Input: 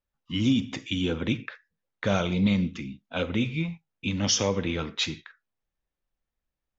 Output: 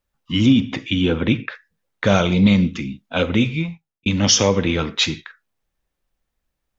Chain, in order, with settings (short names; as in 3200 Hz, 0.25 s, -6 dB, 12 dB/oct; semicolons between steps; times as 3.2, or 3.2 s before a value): 0.46–1.49 LPF 3700 Hz 12 dB/oct; 3.4–4.06 fade out; gain +9 dB